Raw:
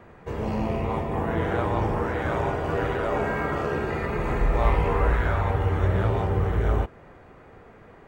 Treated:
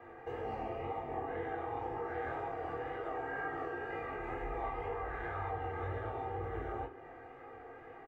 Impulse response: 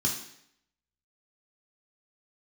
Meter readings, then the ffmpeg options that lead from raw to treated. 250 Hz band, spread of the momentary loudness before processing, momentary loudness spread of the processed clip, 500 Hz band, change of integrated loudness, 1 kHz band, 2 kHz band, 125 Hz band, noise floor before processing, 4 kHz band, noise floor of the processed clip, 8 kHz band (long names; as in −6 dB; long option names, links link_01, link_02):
−16.5 dB, 5 LU, 9 LU, −13.0 dB, −14.5 dB, −10.0 dB, −11.0 dB, −21.0 dB, −50 dBFS, −16.5 dB, −52 dBFS, can't be measured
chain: -filter_complex "[0:a]acrossover=split=260 2500:gain=0.141 1 0.2[link_01][link_02][link_03];[link_01][link_02][link_03]amix=inputs=3:normalize=0,aecho=1:1:2.5:0.89,acompressor=threshold=-34dB:ratio=6,flanger=delay=19:depth=6.6:speed=2,asplit=2[link_04][link_05];[1:a]atrim=start_sample=2205,lowpass=3200[link_06];[link_05][link_06]afir=irnorm=-1:irlink=0,volume=-12.5dB[link_07];[link_04][link_07]amix=inputs=2:normalize=0"